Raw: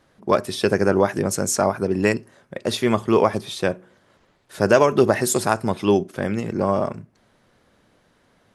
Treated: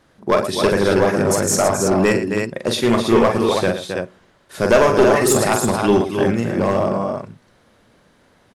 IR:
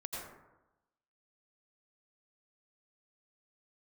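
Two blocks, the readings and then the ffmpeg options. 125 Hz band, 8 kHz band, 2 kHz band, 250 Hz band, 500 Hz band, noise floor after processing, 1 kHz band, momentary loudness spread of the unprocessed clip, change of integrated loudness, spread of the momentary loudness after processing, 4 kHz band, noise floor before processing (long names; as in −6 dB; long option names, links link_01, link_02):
+3.5 dB, +5.0 dB, +4.5 dB, +4.0 dB, +4.0 dB, −56 dBFS, +4.0 dB, 9 LU, +3.5 dB, 9 LU, +5.0 dB, −61 dBFS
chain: -af "aecho=1:1:43|113|268|325:0.473|0.224|0.376|0.473,aeval=exprs='clip(val(0),-1,0.224)':channel_layout=same,volume=3dB"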